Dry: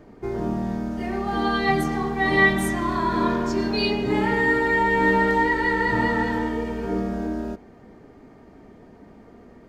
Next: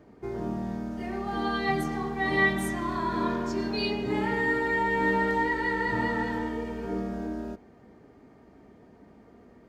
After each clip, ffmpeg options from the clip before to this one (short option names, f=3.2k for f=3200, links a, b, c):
-af "highpass=42,volume=-6dB"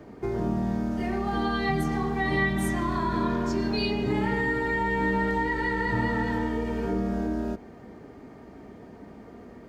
-filter_complex "[0:a]acrossover=split=170[a][b];[b]acompressor=threshold=-37dB:ratio=2.5[c];[a][c]amix=inputs=2:normalize=0,volume=8dB"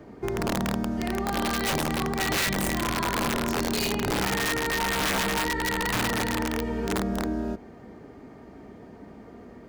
-af "aeval=exprs='(mod(9.44*val(0)+1,2)-1)/9.44':c=same"